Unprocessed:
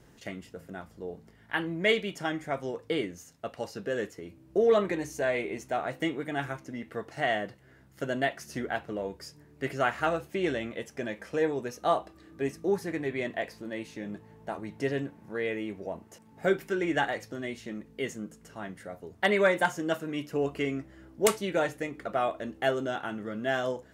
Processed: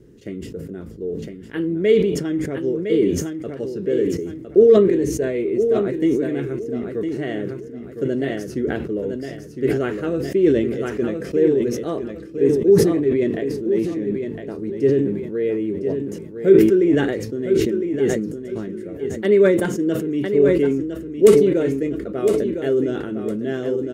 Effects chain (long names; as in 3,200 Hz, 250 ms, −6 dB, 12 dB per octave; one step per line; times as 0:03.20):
low shelf with overshoot 560 Hz +11 dB, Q 3
on a send: repeating echo 1,009 ms, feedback 27%, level −7.5 dB
on the sum: level that may fall only so fast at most 45 dB per second
level −4 dB